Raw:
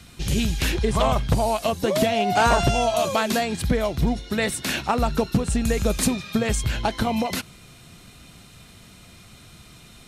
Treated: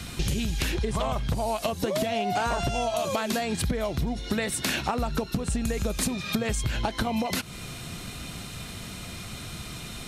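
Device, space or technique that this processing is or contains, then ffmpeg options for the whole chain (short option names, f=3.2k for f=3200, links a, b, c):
serial compression, leveller first: -af "acompressor=threshold=-23dB:ratio=2,acompressor=threshold=-34dB:ratio=6,volume=9dB"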